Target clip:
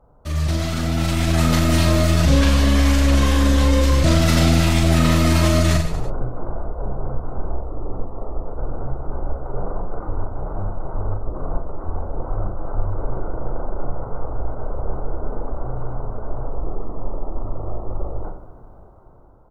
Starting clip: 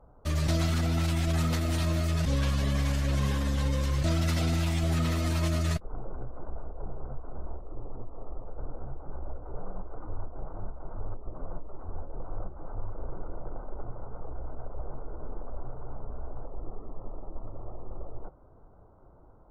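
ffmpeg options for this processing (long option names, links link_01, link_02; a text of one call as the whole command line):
ffmpeg -i in.wav -af "dynaudnorm=framelen=250:gausssize=9:maxgain=9.5dB,aecho=1:1:40|90|152.5|230.6|328.3:0.631|0.398|0.251|0.158|0.1,volume=1.5dB" out.wav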